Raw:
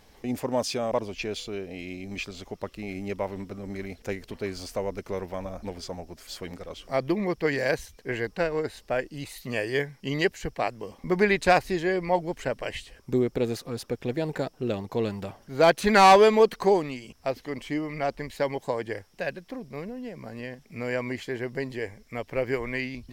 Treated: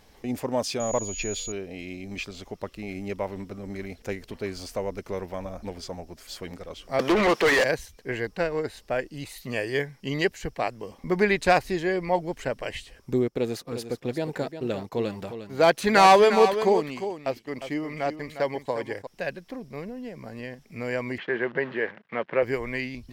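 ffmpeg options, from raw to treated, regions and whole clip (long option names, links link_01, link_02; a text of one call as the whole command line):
ffmpeg -i in.wav -filter_complex "[0:a]asettb=1/sr,asplit=3[link_01][link_02][link_03];[link_01]atrim=end=0.804[link_04];[link_02]atrim=start=0.8:end=1.52,asetpts=PTS-STARTPTS,afade=type=in:duration=0.004:curve=qsin,afade=type=out:start_time=0.716:duration=0.004:curve=qsin,lowshelf=frequency=71:gain=11,aeval=exprs='val(0)+0.02*sin(2*PI*6800*n/s)':channel_layout=same[link_05];[link_03]atrim=start=1.516[link_06];[link_04][link_05]acrossfade=duration=0.004:curve1=hsin:curve2=qsin[link_07];[link_07][link_06]acrossfade=duration=0.004:curve1=qsin:curve2=hsin,asettb=1/sr,asplit=3[link_08][link_09][link_10];[link_08]atrim=end=6.994[link_11];[link_09]atrim=start=6.99:end=7.64,asetpts=PTS-STARTPTS,afade=type=in:duration=0.004:curve=qsin,afade=type=out:start_time=0.646:duration=0.004:curve=qsin,highpass=250,equalizer=frequency=1100:width=1.5:gain=3,asplit=2[link_12][link_13];[link_13]highpass=frequency=720:poles=1,volume=31dB,asoftclip=type=tanh:threshold=-13dB[link_14];[link_12][link_14]amix=inputs=2:normalize=0,lowpass=frequency=3300:poles=1,volume=-6dB[link_15];[link_10]atrim=start=7.636[link_16];[link_11][link_15]acrossfade=duration=0.004:curve1=hsin:curve2=qsin[link_17];[link_17][link_16]acrossfade=duration=0.004:curve1=qsin:curve2=hsin,asettb=1/sr,asplit=3[link_18][link_19][link_20];[link_18]atrim=end=13.284[link_21];[link_19]atrim=start=13.28:end=19.07,asetpts=PTS-STARTPTS,afade=type=in:duration=0.004:curve=qsin,afade=type=out:start_time=5.786:duration=0.004:curve=qsin,agate=range=-12dB:threshold=-44dB:ratio=16:release=100:detection=peak,lowshelf=frequency=69:gain=-11,aecho=1:1:355:0.316,atrim=end_sample=255339[link_22];[link_20]atrim=start=19.066[link_23];[link_21][link_22]acrossfade=duration=0.004:curve1=hsin:curve2=qsin[link_24];[link_24][link_23]acrossfade=duration=0.004:curve1=qsin:curve2=hsin,asettb=1/sr,asplit=3[link_25][link_26][link_27];[link_25]atrim=end=21.184[link_28];[link_26]atrim=start=21.18:end=22.43,asetpts=PTS-STARTPTS,afade=type=in:duration=0.004:curve=qsin,afade=type=out:start_time=1.246:duration=0.004:curve=qsin,acontrast=89,acrusher=bits=7:dc=4:mix=0:aa=0.000001,highpass=frequency=180:width=0.5412,highpass=frequency=180:width=1.3066,equalizer=frequency=270:width_type=q:width=4:gain=-10,equalizer=frequency=440:width_type=q:width=4:gain=-3,equalizer=frequency=700:width_type=q:width=4:gain=-4,equalizer=frequency=1600:width_type=q:width=4:gain=4,equalizer=frequency=2300:width_type=q:width=4:gain=-4,lowpass=frequency=2700:width=0.5412,lowpass=frequency=2700:width=1.3066[link_29];[link_27]atrim=start=22.426[link_30];[link_28][link_29]acrossfade=duration=0.004:curve1=hsin:curve2=qsin[link_31];[link_31][link_30]acrossfade=duration=0.004:curve1=qsin:curve2=hsin" out.wav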